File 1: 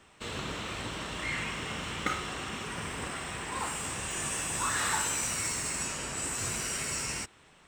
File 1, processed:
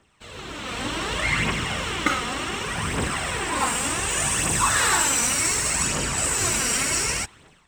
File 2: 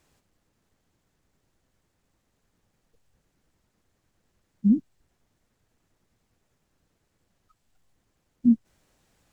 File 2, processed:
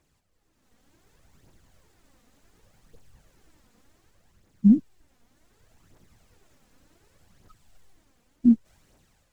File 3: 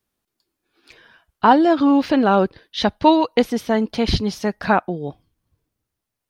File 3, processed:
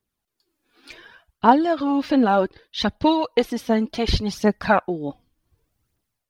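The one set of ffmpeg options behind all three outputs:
-af "dynaudnorm=f=280:g=5:m=15.5dB,aphaser=in_gain=1:out_gain=1:delay=4.3:decay=0.48:speed=0.67:type=triangular,volume=-5.5dB"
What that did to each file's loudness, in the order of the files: +10.5, +2.5, -3.0 LU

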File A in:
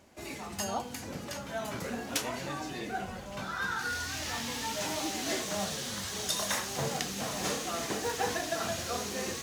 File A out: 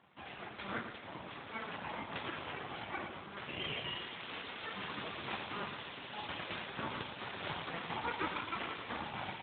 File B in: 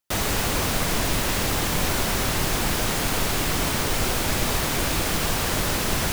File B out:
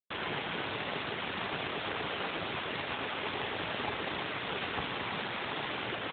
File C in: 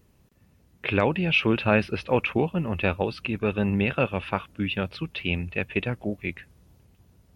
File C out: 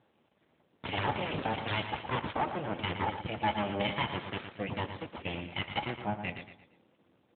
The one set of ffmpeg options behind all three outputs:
-af "aeval=exprs='0.422*sin(PI/2*2.82*val(0)/0.422)':c=same,lowshelf=f=270:g=-9.5,flanger=delay=9.2:depth=5.6:regen=69:speed=1.3:shape=triangular,equalizer=f=420:t=o:w=0.24:g=11.5,aeval=exprs='abs(val(0))':c=same,aecho=1:1:115|230|345|460:0.355|0.142|0.0568|0.0227,volume=-7.5dB" -ar 8000 -c:a libopencore_amrnb -b:a 12200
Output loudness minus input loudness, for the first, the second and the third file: -8.0, -12.0, -8.5 LU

